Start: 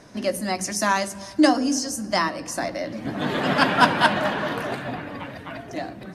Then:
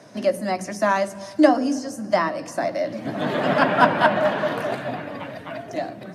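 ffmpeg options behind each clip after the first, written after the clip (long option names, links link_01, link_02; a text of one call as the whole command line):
ffmpeg -i in.wav -filter_complex "[0:a]highpass=frequency=100:width=0.5412,highpass=frequency=100:width=1.3066,equalizer=frequency=620:width=3.9:gain=7,acrossover=split=370|2600[link_01][link_02][link_03];[link_03]acompressor=threshold=-40dB:ratio=4[link_04];[link_01][link_02][link_04]amix=inputs=3:normalize=0" out.wav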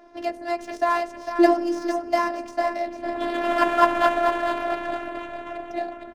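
ffmpeg -i in.wav -filter_complex "[0:a]asplit=5[link_01][link_02][link_03][link_04][link_05];[link_02]adelay=451,afreqshift=-38,volume=-7dB[link_06];[link_03]adelay=902,afreqshift=-76,volume=-16.6dB[link_07];[link_04]adelay=1353,afreqshift=-114,volume=-26.3dB[link_08];[link_05]adelay=1804,afreqshift=-152,volume=-35.9dB[link_09];[link_01][link_06][link_07][link_08][link_09]amix=inputs=5:normalize=0,afftfilt=real='hypot(re,im)*cos(PI*b)':imag='0':win_size=512:overlap=0.75,adynamicsmooth=sensitivity=6.5:basefreq=2200,volume=1dB" out.wav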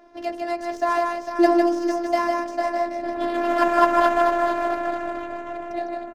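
ffmpeg -i in.wav -af "aecho=1:1:154:0.631,volume=-1dB" out.wav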